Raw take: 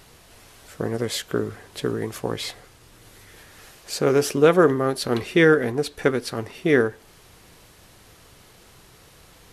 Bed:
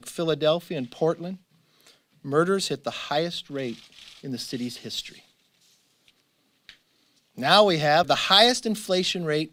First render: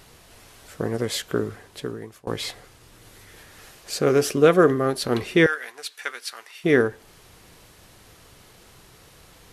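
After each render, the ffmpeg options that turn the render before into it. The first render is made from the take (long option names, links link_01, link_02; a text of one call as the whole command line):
ffmpeg -i in.wav -filter_complex "[0:a]asettb=1/sr,asplit=3[link_01][link_02][link_03];[link_01]atrim=end=3.914[link_04];[link_02]atrim=start=3.91:end=4.9,asetpts=PTS-STARTPTS,afade=type=in:duration=0.004:curve=qsin,afade=type=out:start_time=0.986:duration=0.004:curve=qsin,asuperstop=centerf=900:order=4:qfactor=6[link_05];[link_03]atrim=start=4.896[link_06];[link_04][link_05]acrossfade=duration=0.004:curve1=hsin:curve2=qsin[link_07];[link_07][link_06]acrossfade=duration=0.004:curve1=qsin:curve2=hsin,asettb=1/sr,asplit=3[link_08][link_09][link_10];[link_08]atrim=end=5.464[link_11];[link_09]atrim=start=5.46:end=6.64,asetpts=PTS-STARTPTS,afade=type=in:duration=0.004:curve=qsin,afade=type=out:start_time=1.176:duration=0.004:curve=qsin,highpass=1500[link_12];[link_10]atrim=start=6.636[link_13];[link_11][link_12]acrossfade=duration=0.004:curve1=hsin:curve2=qsin[link_14];[link_14][link_13]acrossfade=duration=0.004:curve1=qsin:curve2=hsin,asplit=2[link_15][link_16];[link_15]atrim=end=2.27,asetpts=PTS-STARTPTS,afade=type=out:start_time=1.43:duration=0.84:silence=0.0749894[link_17];[link_16]atrim=start=2.27,asetpts=PTS-STARTPTS,afade=type=in:duration=0.004:curve=hsin:silence=0.0749894[link_18];[link_17][link_18]concat=n=2:v=0:a=1" out.wav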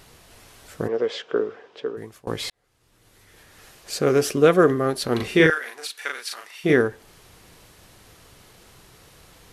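ffmpeg -i in.wav -filter_complex "[0:a]asplit=3[link_01][link_02][link_03];[link_01]afade=type=out:start_time=0.87:duration=0.02[link_04];[link_02]highpass=340,equalizer=frequency=460:width_type=q:width=4:gain=8,equalizer=frequency=2000:width_type=q:width=4:gain=-4,equalizer=frequency=4200:width_type=q:width=4:gain=-8,lowpass=frequency=4600:width=0.5412,lowpass=frequency=4600:width=1.3066,afade=type=in:start_time=0.87:duration=0.02,afade=type=out:start_time=1.96:duration=0.02[link_05];[link_03]afade=type=in:start_time=1.96:duration=0.02[link_06];[link_04][link_05][link_06]amix=inputs=3:normalize=0,asettb=1/sr,asplit=3[link_07][link_08][link_09];[link_07]atrim=end=5.164[link_10];[link_08]atrim=start=5.16:end=6.73,asetpts=PTS-STARTPTS,afade=type=in:duration=0.004:curve=qsin,afade=type=out:start_time=1.566:duration=0.004:curve=qsin,asplit=2[link_11][link_12];[link_12]adelay=38,volume=-2.5dB[link_13];[link_11][link_13]amix=inputs=2:normalize=0,atrim=end_sample=69237[link_14];[link_09]atrim=start=6.726[link_15];[link_10][link_14]acrossfade=duration=0.004:curve1=hsin:curve2=qsin[link_16];[link_16][link_15]acrossfade=duration=0.004:curve1=qsin:curve2=hsin,asplit=2[link_17][link_18];[link_17]atrim=end=2.5,asetpts=PTS-STARTPTS,afade=type=out:start_time=2.496:duration=0.004:curve=hsin[link_19];[link_18]atrim=start=2.5,asetpts=PTS-STARTPTS,afade=type=in:duration=1.5[link_20];[link_19][link_20]concat=n=2:v=0:a=1" out.wav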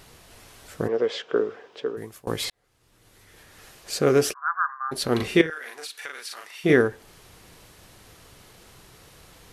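ffmpeg -i in.wav -filter_complex "[0:a]asettb=1/sr,asplit=3[link_01][link_02][link_03];[link_01]atrim=end=1.334[link_04];[link_02]atrim=start=1.33:end=2.45,asetpts=PTS-STARTPTS,afade=type=in:duration=0.004:curve=qsin,afade=type=out:start_time=1.116:duration=0.004:curve=qsin,highshelf=frequency=9800:gain=10.5[link_05];[link_03]atrim=start=2.446[link_06];[link_04][link_05]acrossfade=duration=0.004:curve1=hsin:curve2=qsin[link_07];[link_07][link_06]acrossfade=duration=0.004:curve1=qsin:curve2=hsin,asplit=3[link_08][link_09][link_10];[link_08]afade=type=out:start_time=4.32:duration=0.02[link_11];[link_09]asuperpass=centerf=1200:order=12:qfactor=1.5,afade=type=in:start_time=4.32:duration=0.02,afade=type=out:start_time=4.91:duration=0.02[link_12];[link_10]afade=type=in:start_time=4.91:duration=0.02[link_13];[link_11][link_12][link_13]amix=inputs=3:normalize=0,asettb=1/sr,asplit=3[link_14][link_15][link_16];[link_14]atrim=end=5.414[link_17];[link_15]atrim=start=5.41:end=6.53,asetpts=PTS-STARTPTS,afade=type=in:duration=0.004:curve=qsin,afade=type=out:start_time=1.116:duration=0.004:curve=qsin,acompressor=threshold=-34dB:ratio=2.5:attack=3.2:release=140:knee=1:detection=peak[link_18];[link_16]atrim=start=6.526[link_19];[link_17][link_18]acrossfade=duration=0.004:curve1=hsin:curve2=qsin[link_20];[link_20][link_19]acrossfade=duration=0.004:curve1=qsin:curve2=hsin" out.wav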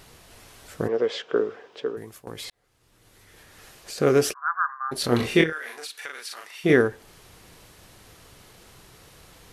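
ffmpeg -i in.wav -filter_complex "[0:a]asettb=1/sr,asplit=3[link_01][link_02][link_03];[link_01]atrim=end=1.974[link_04];[link_02]atrim=start=1.97:end=3.98,asetpts=PTS-STARTPTS,afade=type=in:duration=0.004:curve=qsin,afade=type=out:start_time=2.006:duration=0.004:curve=qsin,acompressor=threshold=-34dB:ratio=4:attack=3.2:release=140:knee=1:detection=peak[link_05];[link_03]atrim=start=3.976[link_06];[link_04][link_05]acrossfade=duration=0.004:curve1=hsin:curve2=qsin[link_07];[link_07][link_06]acrossfade=duration=0.004:curve1=qsin:curve2=hsin,asettb=1/sr,asplit=3[link_08][link_09][link_10];[link_08]atrim=end=5.014[link_11];[link_09]atrim=start=5.01:end=5.79,asetpts=PTS-STARTPTS,afade=type=in:duration=0.004:curve=qsin,afade=type=out:start_time=0.776:duration=0.004:curve=qsin,asplit=2[link_12][link_13];[link_13]adelay=25,volume=-4dB[link_14];[link_12][link_14]amix=inputs=2:normalize=0,atrim=end_sample=34398[link_15];[link_10]atrim=start=5.786[link_16];[link_11][link_15]acrossfade=duration=0.004:curve1=hsin:curve2=qsin[link_17];[link_17][link_16]acrossfade=duration=0.004:curve1=qsin:curve2=hsin" out.wav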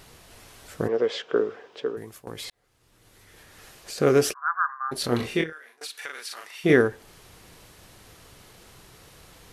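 ffmpeg -i in.wav -filter_complex "[0:a]asplit=2[link_01][link_02];[link_01]atrim=end=5.81,asetpts=PTS-STARTPTS,afade=type=out:start_time=4.85:duration=0.96:silence=0.0630957[link_03];[link_02]atrim=start=5.81,asetpts=PTS-STARTPTS,afade=type=in:duration=0.004:curve=hsin:silence=0.0630957[link_04];[link_03][link_04]concat=n=2:v=0:a=1" out.wav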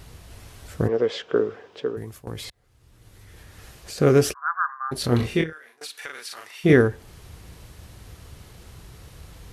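ffmpeg -i in.wav -af "equalizer=frequency=62:width_type=o:width=2.6:gain=14.5" out.wav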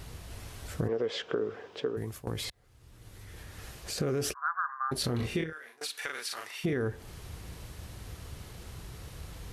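ffmpeg -i in.wav -af "alimiter=limit=-15.5dB:level=0:latency=1:release=44,acompressor=threshold=-29dB:ratio=3" out.wav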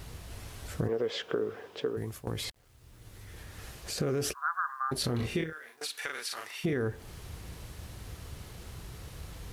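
ffmpeg -i in.wav -af "acrusher=bits=10:mix=0:aa=0.000001" out.wav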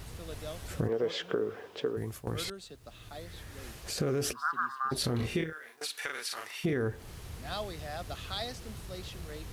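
ffmpeg -i in.wav -i bed.wav -filter_complex "[1:a]volume=-21dB[link_01];[0:a][link_01]amix=inputs=2:normalize=0" out.wav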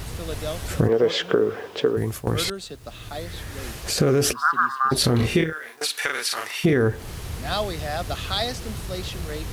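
ffmpeg -i in.wav -af "volume=11.5dB" out.wav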